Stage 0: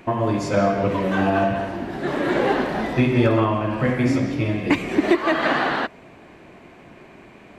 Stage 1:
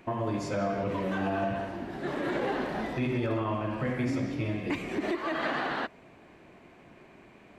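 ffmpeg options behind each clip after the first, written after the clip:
ffmpeg -i in.wav -af "alimiter=limit=-13dB:level=0:latency=1:release=35,volume=-8.5dB" out.wav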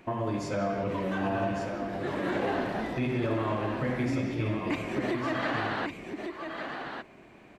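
ffmpeg -i in.wav -af "aecho=1:1:1153:0.473" out.wav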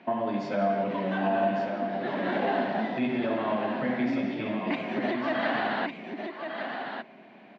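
ffmpeg -i in.wav -af "highpass=frequency=190:width=0.5412,highpass=frequency=190:width=1.3066,equalizer=frequency=220:width_type=q:width=4:gain=4,equalizer=frequency=330:width_type=q:width=4:gain=-7,equalizer=frequency=470:width_type=q:width=4:gain=-5,equalizer=frequency=690:width_type=q:width=4:gain=4,equalizer=frequency=1200:width_type=q:width=4:gain=-6,equalizer=frequency=2400:width_type=q:width=4:gain=-3,lowpass=frequency=4100:width=0.5412,lowpass=frequency=4100:width=1.3066,volume=3.5dB" out.wav

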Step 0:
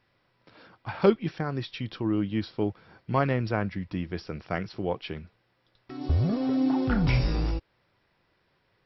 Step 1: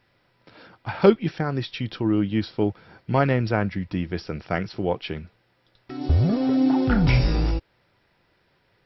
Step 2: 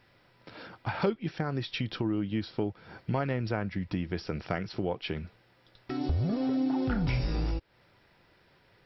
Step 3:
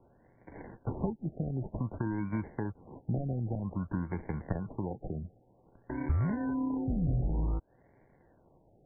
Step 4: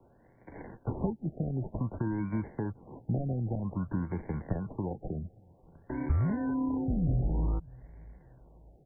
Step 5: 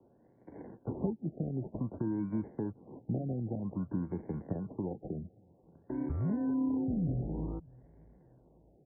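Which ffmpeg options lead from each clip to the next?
ffmpeg -i in.wav -af "bandreject=frequency=1100:width=12,volume=5dB" out.wav
ffmpeg -i in.wav -af "acompressor=threshold=-32dB:ratio=3,volume=2dB" out.wav
ffmpeg -i in.wav -filter_complex "[0:a]acrusher=samples=35:mix=1:aa=0.000001,acrossover=split=250[link_01][link_02];[link_02]acompressor=threshold=-40dB:ratio=2.5[link_03];[link_01][link_03]amix=inputs=2:normalize=0,afftfilt=real='re*lt(b*sr/1024,760*pow(2400/760,0.5+0.5*sin(2*PI*0.53*pts/sr)))':imag='im*lt(b*sr/1024,760*pow(2400/760,0.5+0.5*sin(2*PI*0.53*pts/sr)))':win_size=1024:overlap=0.75" out.wav
ffmpeg -i in.wav -filter_complex "[0:a]acrossover=split=180|780[link_01][link_02][link_03];[link_01]aecho=1:1:585|1170|1755:0.0891|0.0401|0.018[link_04];[link_03]alimiter=level_in=18.5dB:limit=-24dB:level=0:latency=1:release=10,volume=-18.5dB[link_05];[link_04][link_02][link_05]amix=inputs=3:normalize=0,volume=1.5dB" out.wav
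ffmpeg -i in.wav -af "bandpass=frequency=300:width_type=q:width=0.74:csg=0" out.wav

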